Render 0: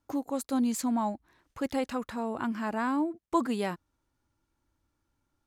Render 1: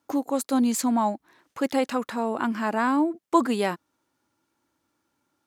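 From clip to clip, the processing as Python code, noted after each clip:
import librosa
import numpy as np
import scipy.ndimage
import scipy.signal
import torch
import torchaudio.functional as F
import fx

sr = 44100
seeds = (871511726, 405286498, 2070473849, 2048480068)

y = scipy.signal.sosfilt(scipy.signal.butter(2, 210.0, 'highpass', fs=sr, output='sos'), x)
y = F.gain(torch.from_numpy(y), 7.0).numpy()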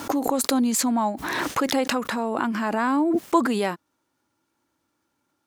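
y = fx.pre_swell(x, sr, db_per_s=21.0)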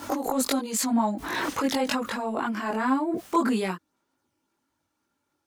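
y = fx.chorus_voices(x, sr, voices=4, hz=0.91, base_ms=21, depth_ms=2.6, mix_pct=55)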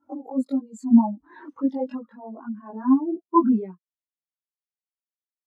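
y = fx.spectral_expand(x, sr, expansion=2.5)
y = F.gain(torch.from_numpy(y), 5.0).numpy()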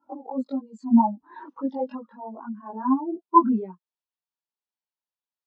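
y = fx.cabinet(x, sr, low_hz=160.0, low_slope=12, high_hz=5200.0, hz=(290.0, 920.0, 2100.0), db=(-6, 8, -7))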